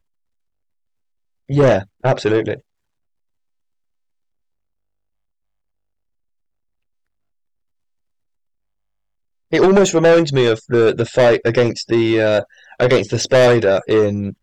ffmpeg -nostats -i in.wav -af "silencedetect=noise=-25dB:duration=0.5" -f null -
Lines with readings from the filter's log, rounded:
silence_start: 0.00
silence_end: 1.50 | silence_duration: 1.50
silence_start: 2.54
silence_end: 9.53 | silence_duration: 6.98